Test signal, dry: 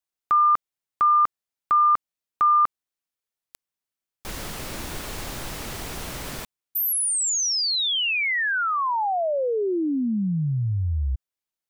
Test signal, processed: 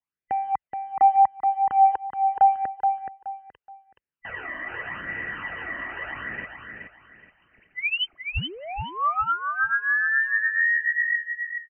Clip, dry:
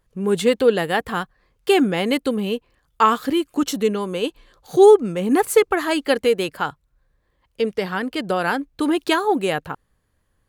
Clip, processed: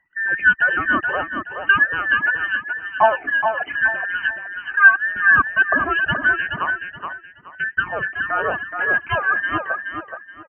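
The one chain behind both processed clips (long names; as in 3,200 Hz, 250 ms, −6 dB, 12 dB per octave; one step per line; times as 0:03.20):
frequency inversion band by band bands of 2,000 Hz
high-pass filter 55 Hz 12 dB per octave
high-shelf EQ 2,000 Hz −5 dB
in parallel at −5 dB: floating-point word with a short mantissa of 2 bits
on the sum: all-pass phaser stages 12, 0.82 Hz, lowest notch 140–1,100 Hz
linear-phase brick-wall low-pass 3,100 Hz
on a send: repeating echo 424 ms, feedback 27%, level −6 dB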